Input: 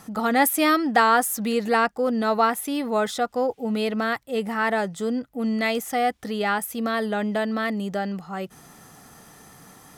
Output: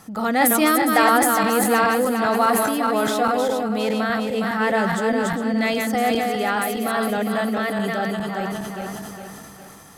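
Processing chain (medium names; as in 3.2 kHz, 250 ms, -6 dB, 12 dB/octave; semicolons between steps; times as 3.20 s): backward echo that repeats 205 ms, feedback 68%, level -4 dB; on a send at -23 dB: reverberation RT60 1.0 s, pre-delay 5 ms; on the sum: decay stretcher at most 23 dB/s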